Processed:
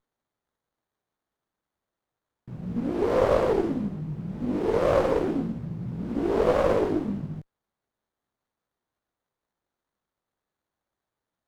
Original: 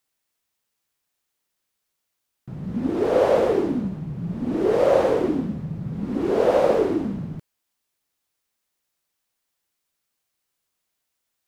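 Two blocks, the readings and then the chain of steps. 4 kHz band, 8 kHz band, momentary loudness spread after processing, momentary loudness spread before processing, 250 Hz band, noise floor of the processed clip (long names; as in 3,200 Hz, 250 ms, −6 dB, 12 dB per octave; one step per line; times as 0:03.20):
−3.0 dB, can't be measured, 12 LU, 13 LU, −3.0 dB, below −85 dBFS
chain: chorus effect 0.34 Hz, delay 17 ms, depth 3 ms
windowed peak hold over 17 samples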